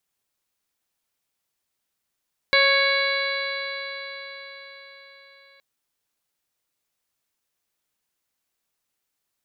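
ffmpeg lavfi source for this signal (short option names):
-f lavfi -i "aevalsrc='0.0891*pow(10,-3*t/4.84)*sin(2*PI*549.44*t)+0.0562*pow(10,-3*t/4.84)*sin(2*PI*1101.51*t)+0.0891*pow(10,-3*t/4.84)*sin(2*PI*1658.82*t)+0.126*pow(10,-3*t/4.84)*sin(2*PI*2223.93*t)+0.0224*pow(10,-3*t/4.84)*sin(2*PI*2799.36*t)+0.0299*pow(10,-3*t/4.84)*sin(2*PI*3387.54*t)+0.0891*pow(10,-3*t/4.84)*sin(2*PI*3990.8*t)+0.0316*pow(10,-3*t/4.84)*sin(2*PI*4611.39*t)':d=3.07:s=44100"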